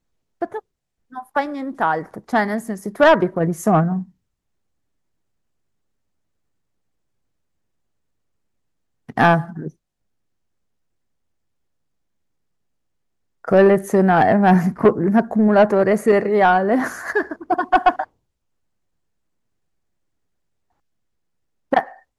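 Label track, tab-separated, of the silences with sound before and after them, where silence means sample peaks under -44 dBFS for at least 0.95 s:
4.100000	9.090000	silence
9.700000	13.450000	silence
18.050000	21.720000	silence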